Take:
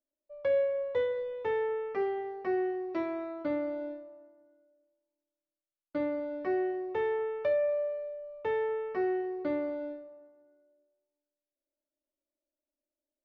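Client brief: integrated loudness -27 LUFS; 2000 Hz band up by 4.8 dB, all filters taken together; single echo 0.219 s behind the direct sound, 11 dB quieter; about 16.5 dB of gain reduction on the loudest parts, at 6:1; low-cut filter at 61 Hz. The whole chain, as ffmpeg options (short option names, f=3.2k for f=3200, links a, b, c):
-af "highpass=61,equalizer=f=2k:t=o:g=5.5,acompressor=threshold=-43dB:ratio=6,aecho=1:1:219:0.282,volume=18dB"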